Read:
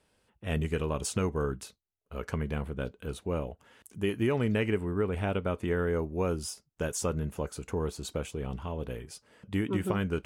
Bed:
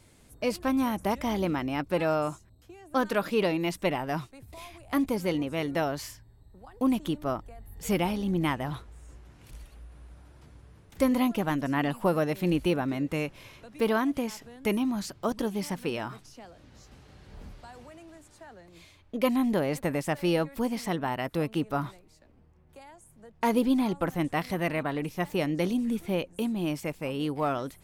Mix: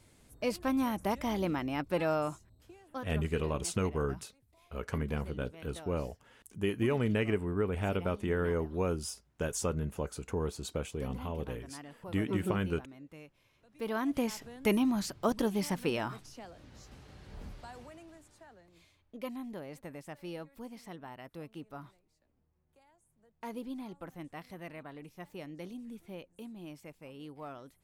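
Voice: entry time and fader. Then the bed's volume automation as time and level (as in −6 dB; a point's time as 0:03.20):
2.60 s, −2.0 dB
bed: 0:02.68 −4 dB
0:03.18 −21 dB
0:13.50 −21 dB
0:14.22 −0.5 dB
0:17.71 −0.5 dB
0:19.46 −16.5 dB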